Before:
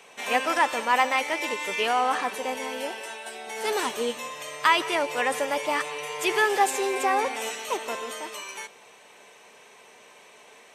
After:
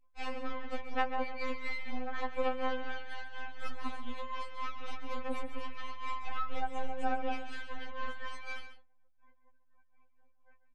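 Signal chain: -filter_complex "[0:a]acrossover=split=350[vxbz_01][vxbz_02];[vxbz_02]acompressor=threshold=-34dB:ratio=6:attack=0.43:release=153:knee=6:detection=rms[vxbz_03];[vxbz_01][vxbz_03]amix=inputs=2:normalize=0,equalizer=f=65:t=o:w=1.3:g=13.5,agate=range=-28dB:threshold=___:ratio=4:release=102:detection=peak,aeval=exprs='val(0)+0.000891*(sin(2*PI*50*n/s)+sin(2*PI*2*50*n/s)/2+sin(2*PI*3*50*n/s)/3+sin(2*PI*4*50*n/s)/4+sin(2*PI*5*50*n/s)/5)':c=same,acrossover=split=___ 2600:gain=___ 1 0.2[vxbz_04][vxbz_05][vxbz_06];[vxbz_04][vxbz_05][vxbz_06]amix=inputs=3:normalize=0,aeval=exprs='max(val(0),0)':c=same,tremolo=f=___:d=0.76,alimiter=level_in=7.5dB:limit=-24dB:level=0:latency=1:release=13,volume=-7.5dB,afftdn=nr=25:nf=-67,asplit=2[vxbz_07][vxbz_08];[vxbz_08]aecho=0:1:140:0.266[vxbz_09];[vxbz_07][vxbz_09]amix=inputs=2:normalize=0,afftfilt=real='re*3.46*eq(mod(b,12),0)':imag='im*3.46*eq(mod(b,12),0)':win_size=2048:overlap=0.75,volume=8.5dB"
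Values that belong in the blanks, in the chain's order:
-45dB, 300, 0.141, 4.1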